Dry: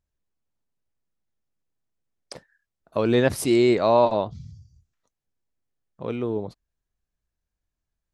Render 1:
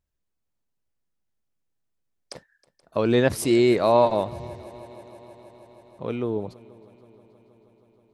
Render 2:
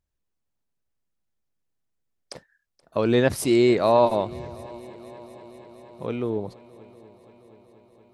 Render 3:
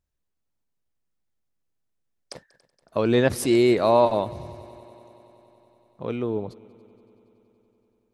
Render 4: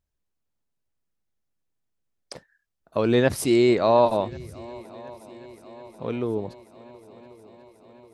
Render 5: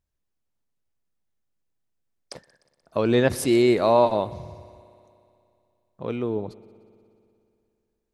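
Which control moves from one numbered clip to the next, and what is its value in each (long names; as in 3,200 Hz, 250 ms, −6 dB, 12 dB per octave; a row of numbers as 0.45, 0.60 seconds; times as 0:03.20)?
echo machine with several playback heads, delay time: 159, 238, 94, 363, 60 milliseconds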